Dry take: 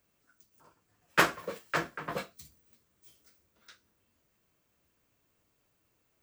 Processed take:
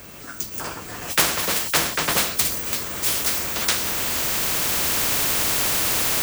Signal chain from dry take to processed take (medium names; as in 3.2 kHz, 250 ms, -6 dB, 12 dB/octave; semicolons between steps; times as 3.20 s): recorder AGC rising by 7.7 dB/s; spectrum-flattening compressor 4:1; trim +5 dB